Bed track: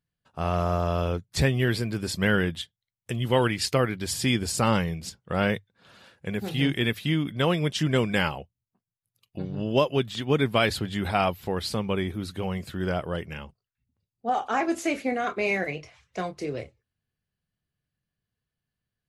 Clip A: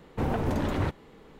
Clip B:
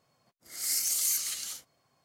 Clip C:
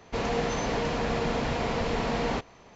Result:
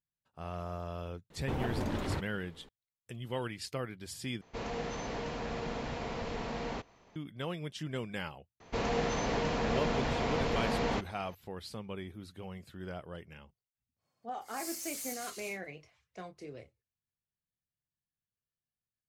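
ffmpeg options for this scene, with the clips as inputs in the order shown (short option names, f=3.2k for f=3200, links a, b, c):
-filter_complex "[3:a]asplit=2[a][b];[0:a]volume=-14.5dB[c];[1:a]equalizer=f=4.4k:t=o:w=1.9:g=4[d];[2:a]volume=27dB,asoftclip=hard,volume=-27dB[e];[c]asplit=2[f][g];[f]atrim=end=4.414[h];[a]atrim=end=2.75,asetpts=PTS-STARTPTS,volume=-9.5dB[i];[g]atrim=start=7.156[j];[d]atrim=end=1.39,asetpts=PTS-STARTPTS,volume=-7dB,afade=t=in:d=0.004:c=hsin,afade=t=out:st=1.386:d=0.004:c=hsin,adelay=1300[k];[b]atrim=end=2.75,asetpts=PTS-STARTPTS,volume=-3.5dB,afade=t=in:d=0.004:c=hsin,afade=t=out:st=2.746:d=0.004:c=hsin,adelay=8600[l];[e]atrim=end=2.04,asetpts=PTS-STARTPTS,volume=-11dB,afade=t=in:d=0.1,afade=t=out:st=1.94:d=0.1,adelay=615636S[m];[h][i]acrossfade=d=0.004:c1=hsin:c2=hsin[n];[n][j]acrossfade=d=0.004:c1=hsin:c2=hsin[o];[o][k][l][m]amix=inputs=4:normalize=0"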